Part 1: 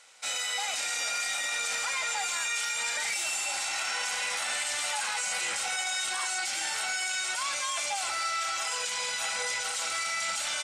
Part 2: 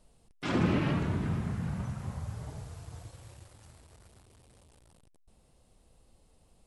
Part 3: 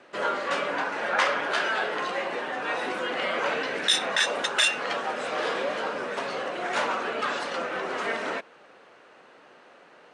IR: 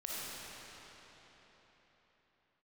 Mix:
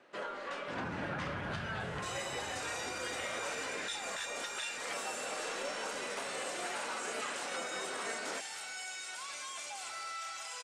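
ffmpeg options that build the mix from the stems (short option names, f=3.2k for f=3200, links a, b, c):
-filter_complex "[0:a]adelay=1800,volume=-5.5dB,asplit=2[a][b];[b]volume=-18dB[c];[1:a]adelay=250,volume=-12dB,asplit=2[d][e];[e]volume=-13.5dB[f];[2:a]alimiter=limit=-21.5dB:level=0:latency=1:release=327,volume=-9dB[g];[a][d]amix=inputs=2:normalize=0,alimiter=level_in=12.5dB:limit=-24dB:level=0:latency=1,volume=-12.5dB,volume=0dB[h];[3:a]atrim=start_sample=2205[i];[c][f]amix=inputs=2:normalize=0[j];[j][i]afir=irnorm=-1:irlink=0[k];[g][h][k]amix=inputs=3:normalize=0"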